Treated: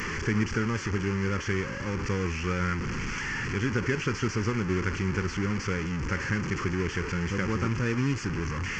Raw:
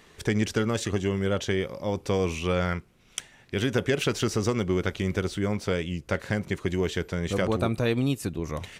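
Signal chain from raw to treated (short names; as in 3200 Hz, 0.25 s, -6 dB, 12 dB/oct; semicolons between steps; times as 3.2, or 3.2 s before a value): delta modulation 32 kbps, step -23 dBFS; fixed phaser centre 1600 Hz, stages 4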